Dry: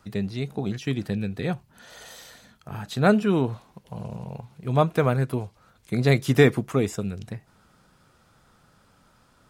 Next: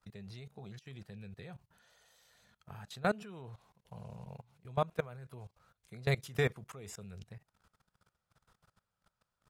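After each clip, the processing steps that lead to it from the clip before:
parametric band 280 Hz −12.5 dB 0.67 octaves
output level in coarse steps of 20 dB
level −7.5 dB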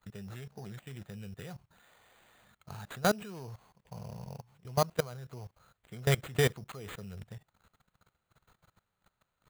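sample-rate reduction 5,400 Hz, jitter 0%
level +4 dB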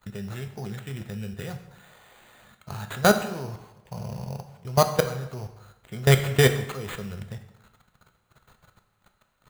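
convolution reverb RT60 0.95 s, pre-delay 3 ms, DRR 6.5 dB
level +8.5 dB

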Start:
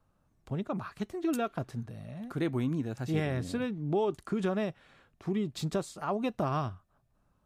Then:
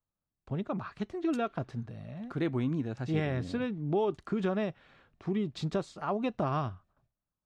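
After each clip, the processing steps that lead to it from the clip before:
low-pass filter 4,800 Hz 12 dB per octave
noise gate with hold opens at −59 dBFS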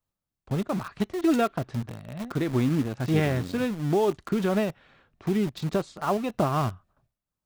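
in parallel at −6 dB: bit-depth reduction 6 bits, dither none
on the sum: amplitude modulation by smooth noise, depth 60%
level +5.5 dB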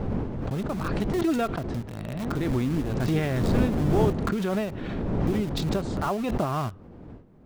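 wind on the microphone 270 Hz −30 dBFS
background raised ahead of every attack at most 23 dB per second
level −3 dB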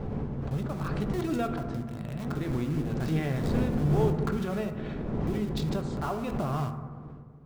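convolution reverb RT60 1.6 s, pre-delay 3 ms, DRR 5.5 dB
level −6 dB

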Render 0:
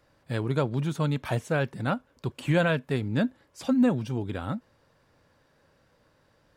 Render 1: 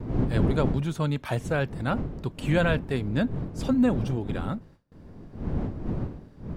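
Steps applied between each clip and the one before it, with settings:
wind on the microphone 200 Hz −31 dBFS
noise gate with hold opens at −44 dBFS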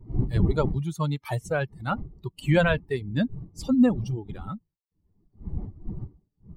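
spectral dynamics exaggerated over time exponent 2
level +5 dB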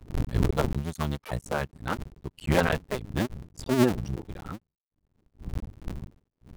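sub-harmonics by changed cycles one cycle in 2, muted

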